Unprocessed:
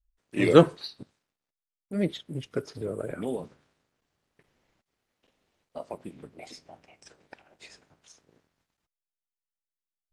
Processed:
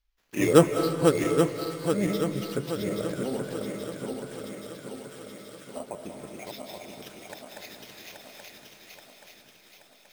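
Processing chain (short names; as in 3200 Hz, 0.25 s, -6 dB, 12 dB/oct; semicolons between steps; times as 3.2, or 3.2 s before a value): regenerating reverse delay 0.414 s, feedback 71%, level -4 dB; sample-rate reducer 8800 Hz, jitter 0%; thin delay 0.65 s, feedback 77%, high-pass 1700 Hz, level -18.5 dB; on a send at -7.5 dB: reverb RT60 1.4 s, pre-delay 0.145 s; on the sum: mismatched tape noise reduction encoder only; gain -1 dB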